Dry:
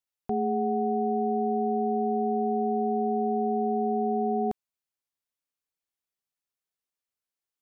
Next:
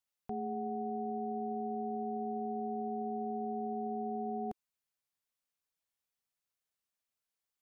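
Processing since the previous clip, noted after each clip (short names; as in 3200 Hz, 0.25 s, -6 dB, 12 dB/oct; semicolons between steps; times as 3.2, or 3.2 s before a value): bell 340 Hz -12 dB 0.25 oct; limiter -30.5 dBFS, peak gain reduction 10.5 dB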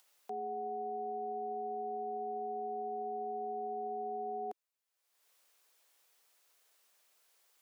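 upward compressor, threshold -53 dBFS; ladder high-pass 310 Hz, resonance 20%; gain +4.5 dB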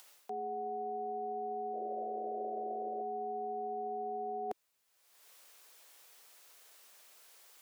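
painted sound noise, 1.73–3.02, 330–720 Hz -46 dBFS; reverse; compressor 6:1, threshold -48 dBFS, peak gain reduction 12.5 dB; reverse; gain +11 dB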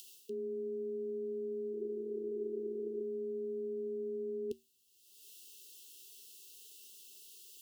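brick-wall FIR band-stop 460–2600 Hz; resonator 77 Hz, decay 0.23 s, harmonics odd, mix 50%; gain +9.5 dB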